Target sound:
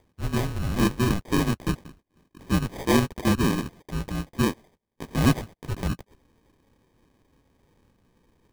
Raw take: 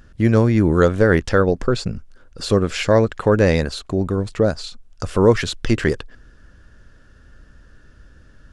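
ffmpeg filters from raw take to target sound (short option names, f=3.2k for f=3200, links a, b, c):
-filter_complex "[0:a]asplit=2[a][b];[b]asetrate=55563,aresample=44100,atempo=0.793701,volume=-1dB[c];[a][c]amix=inputs=2:normalize=0,highpass=f=390:t=q:w=0.5412,highpass=f=390:t=q:w=1.307,lowpass=f=2.3k:t=q:w=0.5176,lowpass=f=2.3k:t=q:w=0.7071,lowpass=f=2.3k:t=q:w=1.932,afreqshift=-320,acrusher=samples=32:mix=1:aa=0.000001,volume=-7dB"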